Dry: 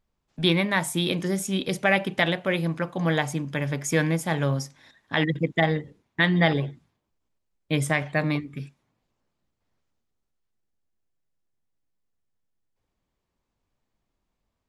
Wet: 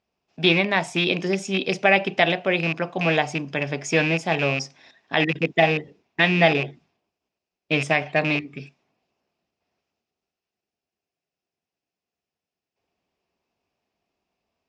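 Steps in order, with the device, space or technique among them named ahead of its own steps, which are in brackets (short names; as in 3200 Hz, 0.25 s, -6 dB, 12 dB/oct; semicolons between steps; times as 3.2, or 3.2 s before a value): car door speaker with a rattle (rattling part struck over -25 dBFS, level -21 dBFS; speaker cabinet 100–6700 Hz, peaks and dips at 120 Hz -8 dB, 400 Hz +6 dB, 700 Hz +9 dB, 2600 Hz +10 dB, 5200 Hz +7 dB)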